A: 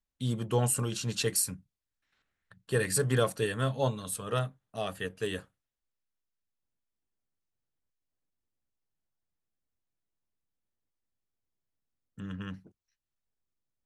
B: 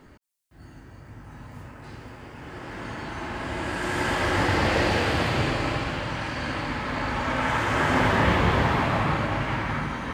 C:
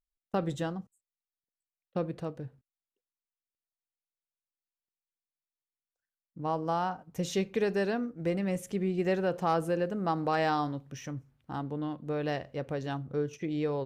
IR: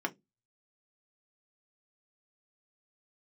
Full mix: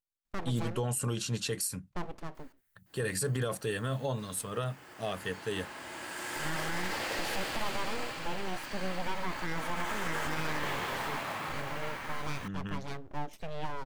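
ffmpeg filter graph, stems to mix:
-filter_complex "[0:a]adelay=250,volume=1[s0];[1:a]highpass=f=510:p=1,aemphasis=mode=production:type=50fm,acrusher=bits=4:mode=log:mix=0:aa=0.000001,adelay=2350,volume=0.299[s1];[2:a]lowshelf=f=110:g=-7.5,aeval=exprs='abs(val(0))':c=same,volume=0.841[s2];[s0][s1][s2]amix=inputs=3:normalize=0,alimiter=limit=0.0708:level=0:latency=1:release=40"

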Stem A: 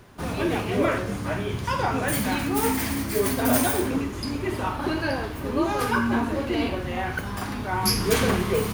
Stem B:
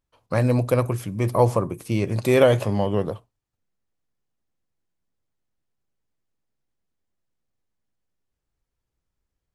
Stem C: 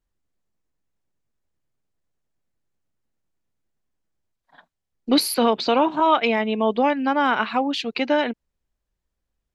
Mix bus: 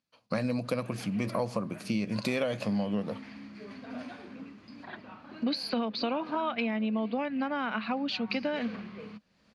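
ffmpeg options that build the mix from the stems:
-filter_complex "[0:a]lowpass=2800,adelay=450,volume=0.112[s0];[1:a]volume=0.841[s1];[2:a]lowpass=f=2200:p=1,acompressor=mode=upward:threshold=0.0562:ratio=2.5,adelay=350,volume=0.562[s2];[s0][s1][s2]amix=inputs=3:normalize=0,highpass=180,equalizer=f=210:t=q:w=4:g=10,equalizer=f=380:t=q:w=4:g=-9,equalizer=f=890:t=q:w=4:g=-5,equalizer=f=2500:t=q:w=4:g=5,equalizer=f=4500:t=q:w=4:g=10,equalizer=f=8100:t=q:w=4:g=-7,lowpass=f=9800:w=0.5412,lowpass=f=9800:w=1.3066,acompressor=threshold=0.0447:ratio=6"

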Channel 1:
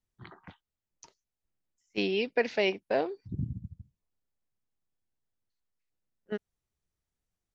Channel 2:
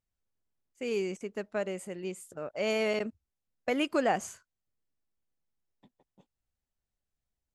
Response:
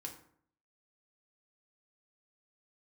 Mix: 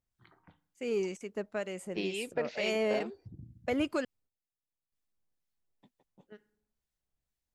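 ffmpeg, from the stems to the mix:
-filter_complex "[0:a]acompressor=threshold=0.00794:ratio=1.5,volume=1.19,asplit=2[s0][s1];[s1]volume=0.15[s2];[1:a]volume=1.12,asplit=3[s3][s4][s5];[s3]atrim=end=4.05,asetpts=PTS-STARTPTS,afade=t=out:st=4.046:d=0.004:c=hsin[s6];[s4]atrim=start=4.05:end=4.92,asetpts=PTS-STARTPTS,volume=0[s7];[s5]atrim=start=4.92,asetpts=PTS-STARTPTS,afade=t=in:d=0.004:c=hsin[s8];[s6][s7][s8]concat=n=3:v=0:a=1,asplit=2[s9][s10];[s10]apad=whole_len=332662[s11];[s0][s11]sidechaingate=range=0.2:threshold=0.00112:ratio=16:detection=peak[s12];[2:a]atrim=start_sample=2205[s13];[s2][s13]afir=irnorm=-1:irlink=0[s14];[s12][s9][s14]amix=inputs=3:normalize=0,acrossover=split=1400[s15][s16];[s15]aeval=exprs='val(0)*(1-0.5/2+0.5/2*cos(2*PI*2.1*n/s))':c=same[s17];[s16]aeval=exprs='val(0)*(1-0.5/2-0.5/2*cos(2*PI*2.1*n/s))':c=same[s18];[s17][s18]amix=inputs=2:normalize=0,asoftclip=type=tanh:threshold=0.1"

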